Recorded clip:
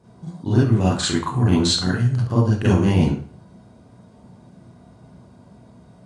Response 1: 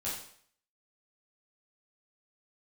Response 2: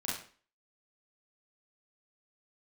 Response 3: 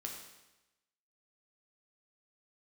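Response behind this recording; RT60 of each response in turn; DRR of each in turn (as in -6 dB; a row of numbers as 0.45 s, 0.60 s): 2; 0.60 s, 0.40 s, 1.0 s; -8.5 dB, -7.5 dB, 0.0 dB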